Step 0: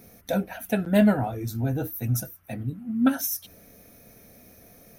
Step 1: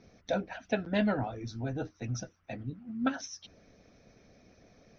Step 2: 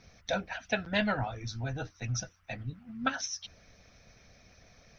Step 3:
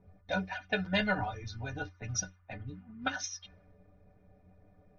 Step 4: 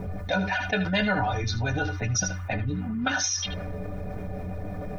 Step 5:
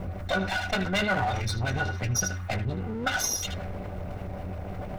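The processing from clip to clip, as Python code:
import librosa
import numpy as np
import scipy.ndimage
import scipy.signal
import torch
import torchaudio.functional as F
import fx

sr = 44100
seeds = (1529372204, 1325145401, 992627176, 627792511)

y1 = scipy.signal.sosfilt(scipy.signal.butter(12, 6000.0, 'lowpass', fs=sr, output='sos'), x)
y1 = fx.hpss(y1, sr, part='harmonic', gain_db=-8)
y1 = F.gain(torch.from_numpy(y1), -2.5).numpy()
y2 = fx.peak_eq(y1, sr, hz=320.0, db=-14.5, octaves=2.1)
y2 = F.gain(torch.from_numpy(y2), 7.0).numpy()
y3 = fx.env_lowpass(y2, sr, base_hz=630.0, full_db=-29.0)
y3 = fx.stiff_resonator(y3, sr, f0_hz=88.0, decay_s=0.2, stiffness=0.03)
y3 = F.gain(torch.from_numpy(y3), 7.0).numpy()
y4 = y3 + 10.0 ** (-15.0 / 20.0) * np.pad(y3, (int(77 * sr / 1000.0), 0))[:len(y3)]
y4 = fx.env_flatten(y4, sr, amount_pct=70)
y4 = F.gain(torch.from_numpy(y4), 3.5).numpy()
y5 = fx.lower_of_two(y4, sr, delay_ms=1.4)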